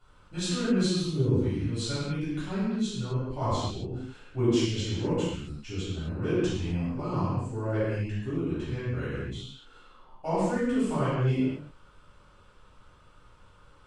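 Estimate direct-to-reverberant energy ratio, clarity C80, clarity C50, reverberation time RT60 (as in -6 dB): -14.0 dB, -0.5 dB, -3.0 dB, no single decay rate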